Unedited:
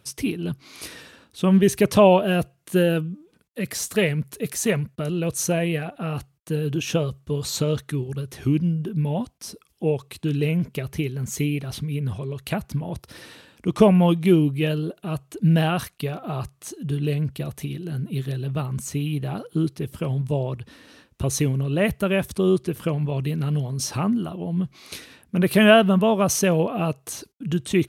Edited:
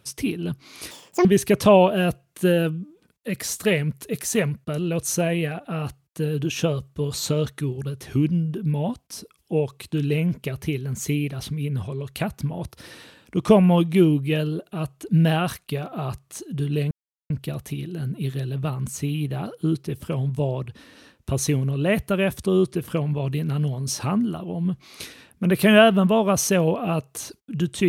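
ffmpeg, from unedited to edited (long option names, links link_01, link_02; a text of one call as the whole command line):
ffmpeg -i in.wav -filter_complex "[0:a]asplit=4[link_01][link_02][link_03][link_04];[link_01]atrim=end=0.914[link_05];[link_02]atrim=start=0.91:end=1.56,asetpts=PTS-STARTPTS,asetrate=84231,aresample=44100[link_06];[link_03]atrim=start=1.556:end=17.22,asetpts=PTS-STARTPTS,afade=type=out:start_time=15.66:duration=0.004:curve=hsin,apad=pad_dur=0.39[link_07];[link_04]atrim=start=17.22,asetpts=PTS-STARTPTS,afade=type=in:duration=0.004:curve=hsin[link_08];[link_05][link_06]acrossfade=duration=0.004:curve1=hsin:curve2=hsin[link_09];[link_07][link_08]concat=n=2:v=0:a=1[link_10];[link_09][link_10]acrossfade=duration=0.004:curve1=hsin:curve2=hsin" out.wav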